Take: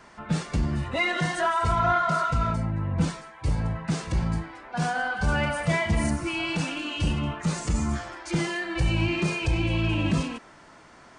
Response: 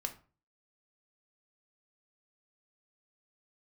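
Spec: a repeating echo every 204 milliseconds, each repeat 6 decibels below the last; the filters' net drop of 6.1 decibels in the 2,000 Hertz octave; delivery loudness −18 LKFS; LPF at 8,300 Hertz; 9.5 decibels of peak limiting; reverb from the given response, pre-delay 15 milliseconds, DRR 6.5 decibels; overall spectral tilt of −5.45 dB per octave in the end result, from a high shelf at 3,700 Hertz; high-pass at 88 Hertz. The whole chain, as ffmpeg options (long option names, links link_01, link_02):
-filter_complex "[0:a]highpass=88,lowpass=8300,equalizer=frequency=2000:width_type=o:gain=-6,highshelf=frequency=3700:gain=-8,alimiter=limit=-22.5dB:level=0:latency=1,aecho=1:1:204|408|612|816|1020|1224:0.501|0.251|0.125|0.0626|0.0313|0.0157,asplit=2[link_01][link_02];[1:a]atrim=start_sample=2205,adelay=15[link_03];[link_02][link_03]afir=irnorm=-1:irlink=0,volume=-6.5dB[link_04];[link_01][link_04]amix=inputs=2:normalize=0,volume=12.5dB"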